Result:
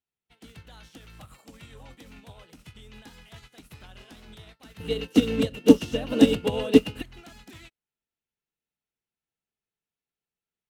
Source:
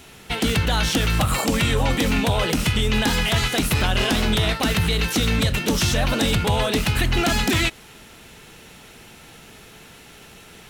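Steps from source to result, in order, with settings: 4.8–7.02 small resonant body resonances 280/450/2800 Hz, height 17 dB, ringing for 35 ms; upward expander 2.5:1, over -35 dBFS; gain -4 dB

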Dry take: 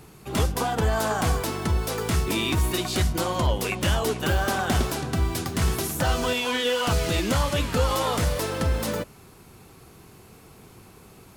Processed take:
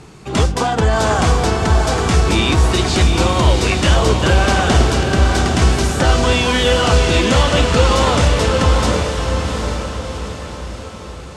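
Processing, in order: LPF 8200 Hz 24 dB/oct; diffused feedback echo 0.759 s, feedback 49%, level -4 dB; gain +8.5 dB

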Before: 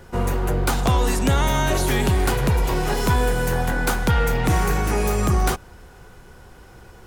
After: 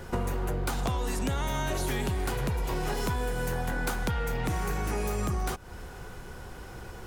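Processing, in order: compressor 12:1, threshold -29 dBFS, peak gain reduction 14.5 dB; gain +2.5 dB

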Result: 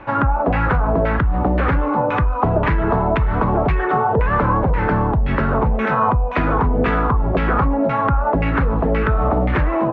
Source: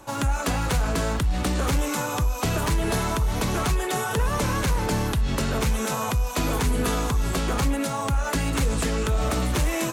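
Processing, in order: compressor, threshold -22 dBFS, peak gain reduction 4 dB; LFO low-pass saw down 1.9 Hz 620–2300 Hz; air absorption 210 m; gain +8.5 dB

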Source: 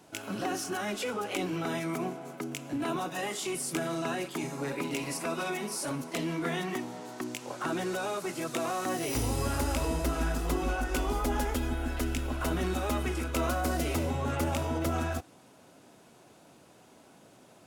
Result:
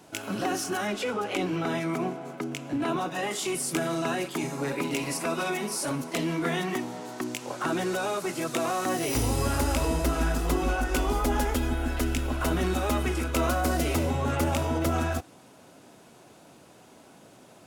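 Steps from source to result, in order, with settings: 0.87–3.31 high shelf 7100 Hz -9.5 dB; gain +4 dB

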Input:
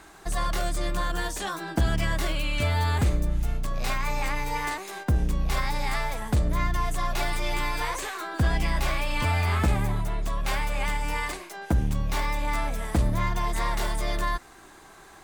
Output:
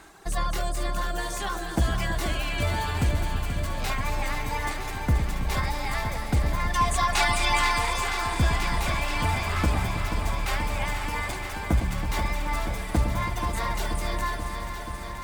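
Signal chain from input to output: reverb removal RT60 1.8 s; spectral gain 6.7–7.78, 700–10000 Hz +9 dB; on a send: echo with dull and thin repeats by turns 0.108 s, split 840 Hz, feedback 84%, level -8.5 dB; on the sum: lo-fi delay 0.482 s, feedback 80%, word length 9-bit, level -8.5 dB

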